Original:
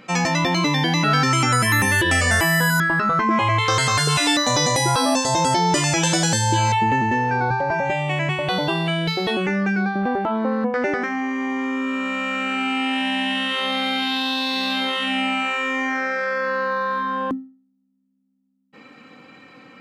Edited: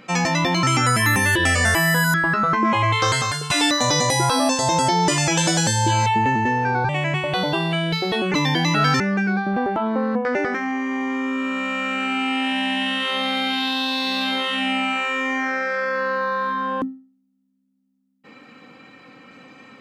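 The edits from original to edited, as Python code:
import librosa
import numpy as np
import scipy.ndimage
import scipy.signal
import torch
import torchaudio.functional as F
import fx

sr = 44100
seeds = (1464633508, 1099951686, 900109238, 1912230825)

y = fx.edit(x, sr, fx.move(start_s=0.63, length_s=0.66, to_s=9.49),
    fx.fade_out_to(start_s=3.75, length_s=0.41, floor_db=-14.0),
    fx.cut(start_s=7.55, length_s=0.49), tone=tone)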